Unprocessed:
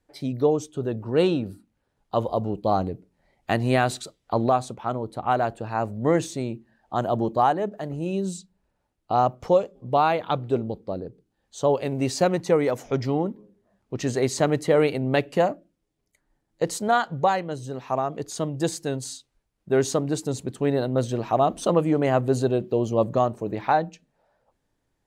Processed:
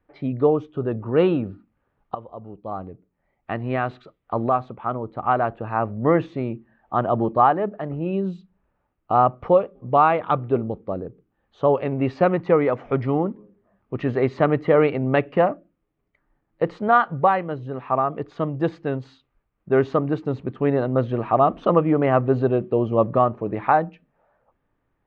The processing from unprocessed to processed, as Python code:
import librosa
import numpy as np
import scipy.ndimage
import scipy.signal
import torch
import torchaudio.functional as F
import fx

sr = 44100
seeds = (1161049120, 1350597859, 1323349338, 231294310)

y = fx.edit(x, sr, fx.fade_in_from(start_s=2.15, length_s=3.78, floor_db=-18.5), tone=tone)
y = scipy.signal.sosfilt(scipy.signal.butter(4, 2600.0, 'lowpass', fs=sr, output='sos'), y)
y = fx.peak_eq(y, sr, hz=1200.0, db=8.0, octaves=0.24)
y = y * librosa.db_to_amplitude(2.5)